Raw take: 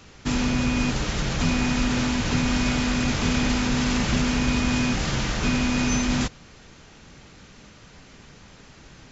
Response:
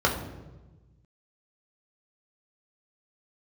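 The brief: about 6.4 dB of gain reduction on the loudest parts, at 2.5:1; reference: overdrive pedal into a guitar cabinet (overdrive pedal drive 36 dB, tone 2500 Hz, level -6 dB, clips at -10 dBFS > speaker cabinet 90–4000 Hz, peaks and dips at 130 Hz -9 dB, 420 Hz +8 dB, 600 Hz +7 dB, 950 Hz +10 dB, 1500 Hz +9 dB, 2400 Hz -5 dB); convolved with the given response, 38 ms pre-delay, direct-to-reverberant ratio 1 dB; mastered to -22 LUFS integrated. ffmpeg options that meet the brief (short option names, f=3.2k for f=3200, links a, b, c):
-filter_complex "[0:a]acompressor=threshold=-28dB:ratio=2.5,asplit=2[a][b];[1:a]atrim=start_sample=2205,adelay=38[c];[b][c]afir=irnorm=-1:irlink=0,volume=-16dB[d];[a][d]amix=inputs=2:normalize=0,asplit=2[e][f];[f]highpass=f=720:p=1,volume=36dB,asoftclip=type=tanh:threshold=-10dB[g];[e][g]amix=inputs=2:normalize=0,lowpass=f=2.5k:p=1,volume=-6dB,highpass=90,equalizer=f=130:t=q:w=4:g=-9,equalizer=f=420:t=q:w=4:g=8,equalizer=f=600:t=q:w=4:g=7,equalizer=f=950:t=q:w=4:g=10,equalizer=f=1.5k:t=q:w=4:g=9,equalizer=f=2.4k:t=q:w=4:g=-5,lowpass=f=4k:w=0.5412,lowpass=f=4k:w=1.3066,volume=-7dB"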